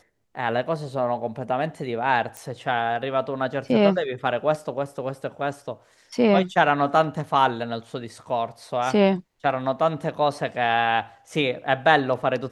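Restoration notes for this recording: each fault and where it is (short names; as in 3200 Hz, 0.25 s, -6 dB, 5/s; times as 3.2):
2.37 pop -19 dBFS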